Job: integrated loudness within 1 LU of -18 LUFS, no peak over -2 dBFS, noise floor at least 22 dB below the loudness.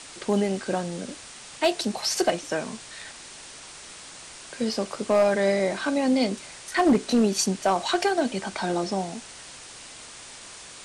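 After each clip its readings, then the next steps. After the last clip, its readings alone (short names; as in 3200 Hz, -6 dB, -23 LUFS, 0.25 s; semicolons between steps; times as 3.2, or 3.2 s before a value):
clipped 0.3%; flat tops at -13.5 dBFS; noise floor -44 dBFS; noise floor target -47 dBFS; loudness -25.0 LUFS; peak -13.5 dBFS; loudness target -18.0 LUFS
-> clip repair -13.5 dBFS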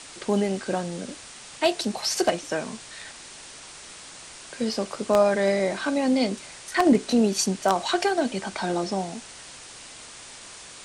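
clipped 0.0%; noise floor -44 dBFS; noise floor target -47 dBFS
-> denoiser 6 dB, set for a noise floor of -44 dBFS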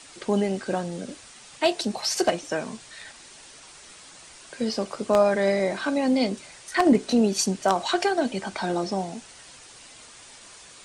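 noise floor -48 dBFS; loudness -24.5 LUFS; peak -4.5 dBFS; loudness target -18.0 LUFS
-> gain +6.5 dB; limiter -2 dBFS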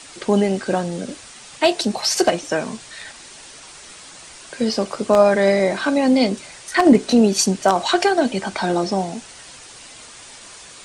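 loudness -18.5 LUFS; peak -2.0 dBFS; noise floor -41 dBFS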